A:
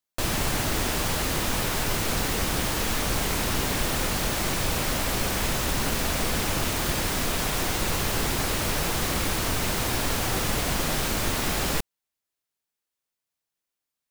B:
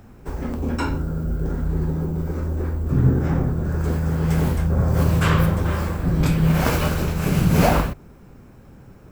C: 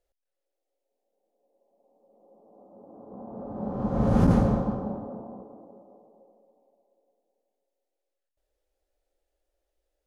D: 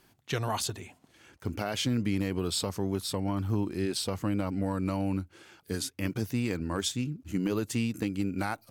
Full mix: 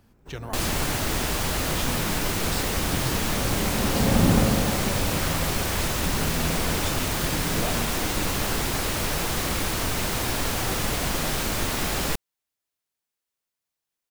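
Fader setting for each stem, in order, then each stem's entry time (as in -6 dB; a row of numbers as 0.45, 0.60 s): 0.0, -14.5, 0.0, -5.5 dB; 0.35, 0.00, 0.00, 0.00 s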